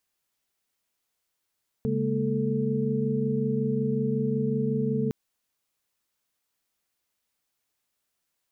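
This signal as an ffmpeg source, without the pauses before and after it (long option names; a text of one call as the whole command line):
ffmpeg -f lavfi -i "aevalsrc='0.0355*(sin(2*PI*138.59*t)+sin(2*PI*207.65*t)+sin(2*PI*233.08*t)+sin(2*PI*440*t))':duration=3.26:sample_rate=44100" out.wav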